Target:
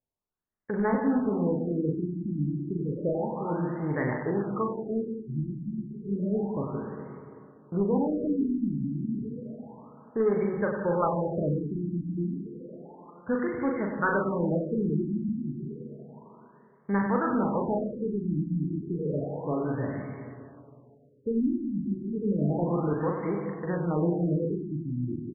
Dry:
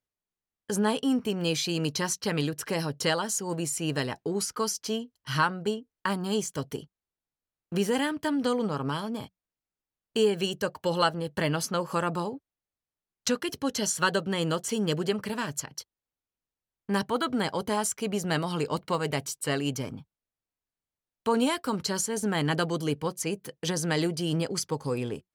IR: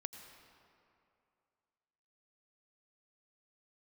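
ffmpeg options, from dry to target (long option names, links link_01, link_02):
-filter_complex "[0:a]aecho=1:1:40|96|174.4|284.2|437.8:0.631|0.398|0.251|0.158|0.1,aeval=exprs='0.299*(cos(1*acos(clip(val(0)/0.299,-1,1)))-cos(1*PI/2))+0.0299*(cos(5*acos(clip(val(0)/0.299,-1,1)))-cos(5*PI/2))':channel_layout=same[link_01];[1:a]atrim=start_sample=2205,asetrate=41895,aresample=44100[link_02];[link_01][link_02]afir=irnorm=-1:irlink=0,afftfilt=real='re*lt(b*sr/1024,340*pow(2300/340,0.5+0.5*sin(2*PI*0.31*pts/sr)))':imag='im*lt(b*sr/1024,340*pow(2300/340,0.5+0.5*sin(2*PI*0.31*pts/sr)))':win_size=1024:overlap=0.75"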